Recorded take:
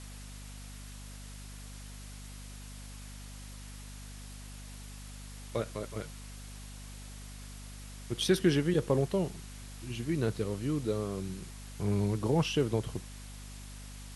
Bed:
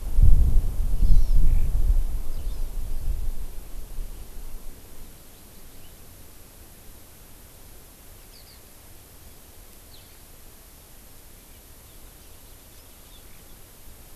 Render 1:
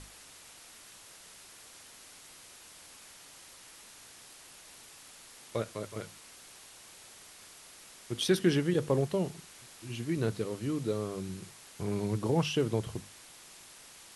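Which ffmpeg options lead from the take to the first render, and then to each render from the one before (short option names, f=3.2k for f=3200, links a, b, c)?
-af "bandreject=f=50:t=h:w=6,bandreject=f=100:t=h:w=6,bandreject=f=150:t=h:w=6,bandreject=f=200:t=h:w=6,bandreject=f=250:t=h:w=6"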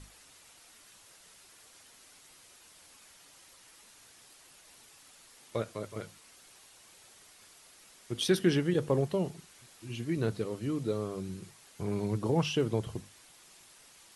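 -af "afftdn=nr=6:nf=-53"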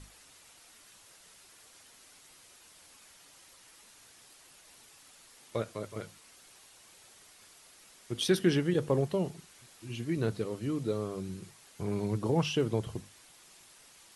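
-af anull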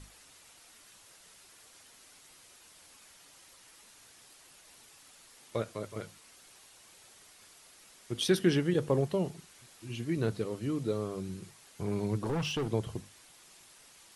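-filter_complex "[0:a]asettb=1/sr,asplit=3[a][b][c];[a]atrim=end=12.244[d];[b]atrim=start=12.24:end=12.72,asetpts=PTS-STARTPTS,afade=t=in:d=0.004:c=qsin,afade=t=out:st=0.476:d=0.004:c=qsin,asoftclip=type=hard:threshold=-29dB[e];[c]atrim=start=12.716[f];[d][e]acrossfade=d=0.004:c1=hsin:c2=qsin[g];[g][f]acrossfade=d=0.004:c1=qsin:c2=hsin"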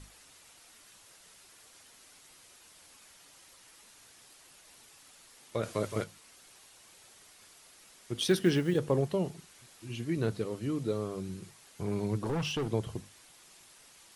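-filter_complex "[0:a]asettb=1/sr,asplit=3[a][b][c];[a]atrim=end=5.634[d];[b]atrim=start=5.63:end=6.04,asetpts=PTS-STARTPTS,afade=t=in:d=0.004:c=qsin,afade=t=out:st=0.406:d=0.004:c=qsin,acontrast=75[e];[c]atrim=start=6.036[f];[d][e]acrossfade=d=0.004:c1=hsin:c2=qsin[g];[g][f]acrossfade=d=0.004:c1=qsin:c2=hsin,asplit=3[h][i][j];[h]afade=t=out:st=8.16:d=0.02[k];[i]acrusher=bits=8:mode=log:mix=0:aa=0.000001,afade=t=in:st=8.16:d=0.02,afade=t=out:st=8.77:d=0.02[l];[j]afade=t=in:st=8.77:d=0.02[m];[k][l][m]amix=inputs=3:normalize=0"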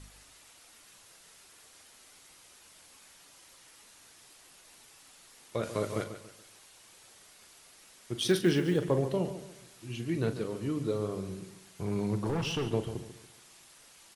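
-filter_complex "[0:a]asplit=2[a][b];[b]adelay=40,volume=-11dB[c];[a][c]amix=inputs=2:normalize=0,asplit=2[d][e];[e]adelay=142,lowpass=f=4.9k:p=1,volume=-11dB,asplit=2[f][g];[g]adelay=142,lowpass=f=4.9k:p=1,volume=0.35,asplit=2[h][i];[i]adelay=142,lowpass=f=4.9k:p=1,volume=0.35,asplit=2[j][k];[k]adelay=142,lowpass=f=4.9k:p=1,volume=0.35[l];[f][h][j][l]amix=inputs=4:normalize=0[m];[d][m]amix=inputs=2:normalize=0"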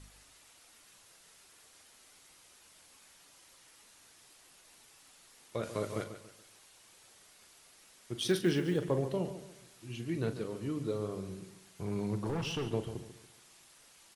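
-af "volume=-3.5dB"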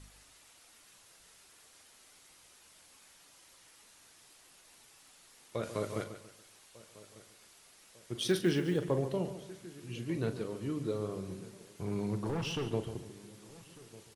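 -filter_complex "[0:a]asplit=2[a][b];[b]adelay=1198,lowpass=f=2k:p=1,volume=-20dB,asplit=2[c][d];[d]adelay=1198,lowpass=f=2k:p=1,volume=0.55,asplit=2[e][f];[f]adelay=1198,lowpass=f=2k:p=1,volume=0.55,asplit=2[g][h];[h]adelay=1198,lowpass=f=2k:p=1,volume=0.55[i];[a][c][e][g][i]amix=inputs=5:normalize=0"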